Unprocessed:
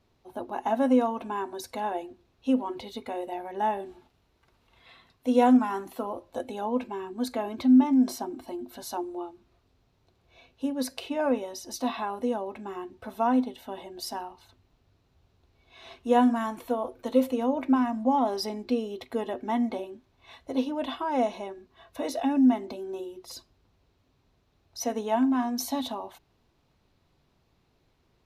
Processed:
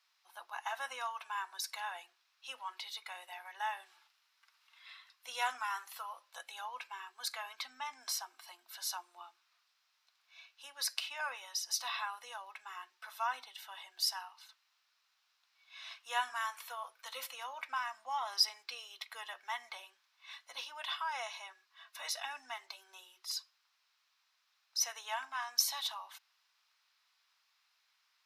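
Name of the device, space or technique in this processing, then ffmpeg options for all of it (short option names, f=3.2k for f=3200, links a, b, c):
headphones lying on a table: -af "highpass=f=1.2k:w=0.5412,highpass=f=1.2k:w=1.3066,equalizer=f=5.2k:t=o:w=0.28:g=6,volume=1dB"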